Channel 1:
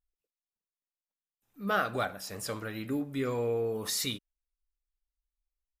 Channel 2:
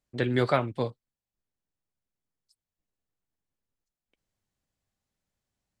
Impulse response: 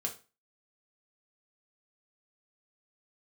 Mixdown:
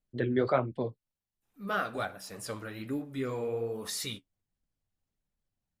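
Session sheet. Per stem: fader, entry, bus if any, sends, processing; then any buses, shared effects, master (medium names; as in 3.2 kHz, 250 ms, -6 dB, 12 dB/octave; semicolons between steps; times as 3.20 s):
+1.0 dB, 0.00 s, no send, peaking EQ 9.7 kHz +4 dB 0.27 oct
+1.5 dB, 0.00 s, no send, resonances exaggerated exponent 1.5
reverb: none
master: treble shelf 8.3 kHz -4.5 dB; flange 1.3 Hz, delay 3.8 ms, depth 9.2 ms, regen -40%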